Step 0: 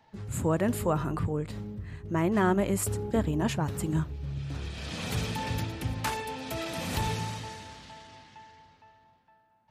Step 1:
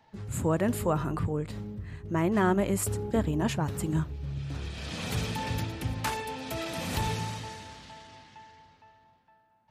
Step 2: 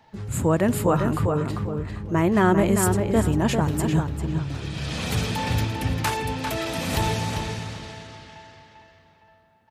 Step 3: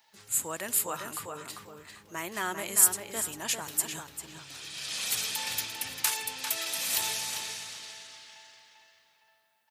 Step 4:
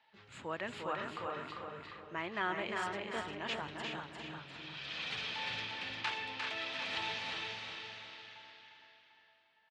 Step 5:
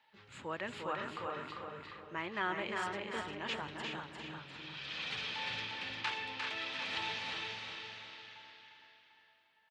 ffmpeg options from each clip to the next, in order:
ffmpeg -i in.wav -af anull out.wav
ffmpeg -i in.wav -filter_complex "[0:a]asplit=2[link_01][link_02];[link_02]adelay=396,lowpass=frequency=3800:poles=1,volume=-5dB,asplit=2[link_03][link_04];[link_04]adelay=396,lowpass=frequency=3800:poles=1,volume=0.26,asplit=2[link_05][link_06];[link_06]adelay=396,lowpass=frequency=3800:poles=1,volume=0.26[link_07];[link_01][link_03][link_05][link_07]amix=inputs=4:normalize=0,volume=6dB" out.wav
ffmpeg -i in.wav -af "aderivative,volume=5.5dB" out.wav
ffmpeg -i in.wav -filter_complex "[0:a]lowpass=frequency=3400:width=0.5412,lowpass=frequency=3400:width=1.3066,asplit=2[link_01][link_02];[link_02]aecho=0:1:351|702|1053|1404:0.596|0.197|0.0649|0.0214[link_03];[link_01][link_03]amix=inputs=2:normalize=0,volume=-2.5dB" out.wav
ffmpeg -i in.wav -af "bandreject=frequency=680:width=12" out.wav

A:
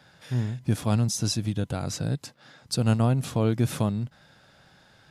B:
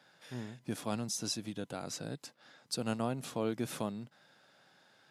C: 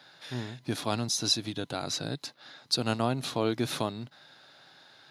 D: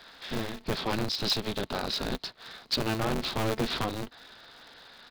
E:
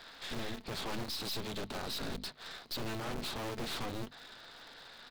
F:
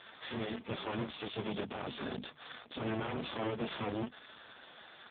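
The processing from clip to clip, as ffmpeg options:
ffmpeg -i in.wav -af "highpass=240,volume=-7dB" out.wav
ffmpeg -i in.wav -af "equalizer=frequency=200:width_type=o:width=0.33:gain=-9,equalizer=frequency=500:width_type=o:width=0.33:gain=-5,equalizer=frequency=4000:width_type=o:width=0.33:gain=9,equalizer=frequency=8000:width_type=o:width=0.33:gain=-7,equalizer=frequency=12500:width_type=o:width=0.33:gain=-6,volume=8dB" out.wav
ffmpeg -i in.wav -af "aresample=11025,asoftclip=type=tanh:threshold=-26dB,aresample=44100,aeval=exprs='val(0)*sgn(sin(2*PI*110*n/s))':channel_layout=same,volume=4.5dB" out.wav
ffmpeg -i in.wav -af "bandreject=frequency=50:width_type=h:width=6,bandreject=frequency=100:width_type=h:width=6,bandreject=frequency=150:width_type=h:width=6,bandreject=frequency=200:width_type=h:width=6,bandreject=frequency=250:width_type=h:width=6,aeval=exprs='(tanh(89.1*val(0)+0.65)-tanh(0.65))/89.1':channel_layout=same,volume=2dB" out.wav
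ffmpeg -i in.wav -af "volume=5.5dB" -ar 8000 -c:a libopencore_amrnb -b:a 4750 out.amr

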